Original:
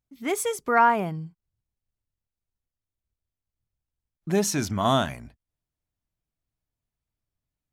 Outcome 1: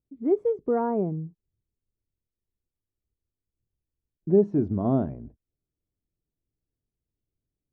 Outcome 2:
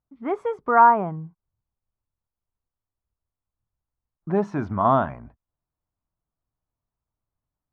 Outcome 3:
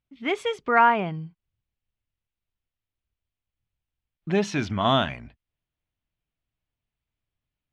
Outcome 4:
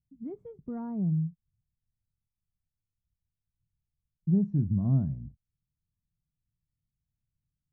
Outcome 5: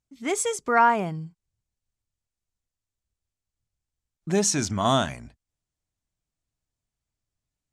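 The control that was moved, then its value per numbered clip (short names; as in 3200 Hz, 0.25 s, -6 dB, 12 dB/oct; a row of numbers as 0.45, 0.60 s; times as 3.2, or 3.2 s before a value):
synth low-pass, frequency: 400, 1100, 3000, 160, 7700 Hz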